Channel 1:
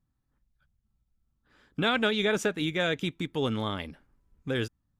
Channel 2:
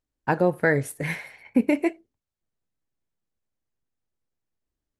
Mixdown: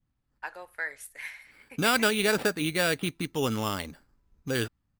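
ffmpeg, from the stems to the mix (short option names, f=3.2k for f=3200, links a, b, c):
-filter_complex "[0:a]adynamicequalizer=threshold=0.0126:dfrequency=1400:dqfactor=0.76:tfrequency=1400:tqfactor=0.76:attack=5:release=100:ratio=0.375:range=2:mode=boostabove:tftype=bell,acrusher=samples=7:mix=1:aa=0.000001,volume=0dB[a];[1:a]highpass=1.4k,agate=range=-33dB:threshold=-52dB:ratio=3:detection=peak,adelay=150,volume=-6.5dB[b];[a][b]amix=inputs=2:normalize=0"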